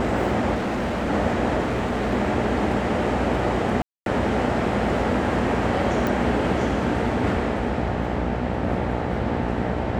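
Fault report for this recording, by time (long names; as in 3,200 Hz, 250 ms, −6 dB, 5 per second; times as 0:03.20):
mains buzz 60 Hz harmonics 15 −28 dBFS
0:00.54–0:01.11: clipping −21.5 dBFS
0:01.60–0:02.13: clipping −20 dBFS
0:03.82–0:04.06: drop-out 242 ms
0:06.07: click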